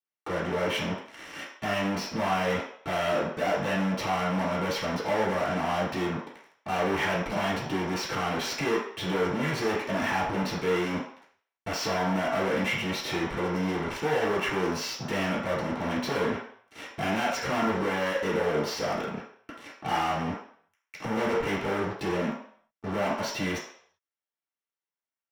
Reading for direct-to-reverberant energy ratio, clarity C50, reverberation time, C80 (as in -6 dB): -7.0 dB, 4.0 dB, 0.60 s, 8.0 dB